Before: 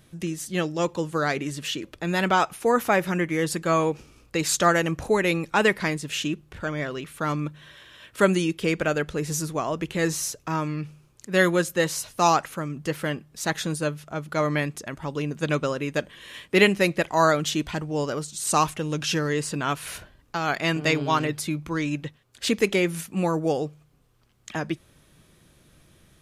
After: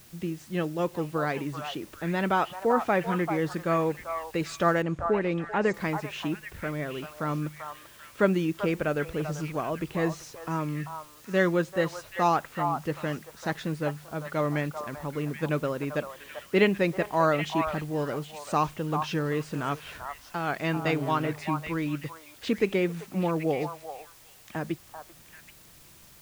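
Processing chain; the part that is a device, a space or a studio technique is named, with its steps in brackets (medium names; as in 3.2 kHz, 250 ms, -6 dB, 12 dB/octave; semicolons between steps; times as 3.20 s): cassette deck with a dirty head (tape spacing loss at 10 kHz 23 dB; wow and flutter 27 cents; white noise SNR 25 dB); 4.82–5.74 s: distance through air 400 m; repeats whose band climbs or falls 390 ms, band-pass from 920 Hz, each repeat 1.4 oct, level -4 dB; trim -2 dB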